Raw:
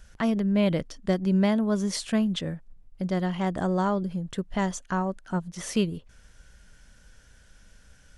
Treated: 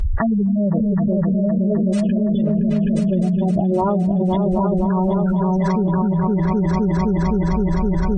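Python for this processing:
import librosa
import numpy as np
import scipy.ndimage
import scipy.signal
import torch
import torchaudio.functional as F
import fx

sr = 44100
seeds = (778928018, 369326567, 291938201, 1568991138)

p1 = fx.tracing_dist(x, sr, depth_ms=0.39)
p2 = fx.spec_gate(p1, sr, threshold_db=-10, keep='strong')
p3 = fx.brickwall_lowpass(p2, sr, high_hz=9600.0)
p4 = fx.notch_comb(p3, sr, f0_hz=260.0)
p5 = p4 + fx.echo_opening(p4, sr, ms=258, hz=200, octaves=2, feedback_pct=70, wet_db=0, dry=0)
y = fx.env_flatten(p5, sr, amount_pct=100)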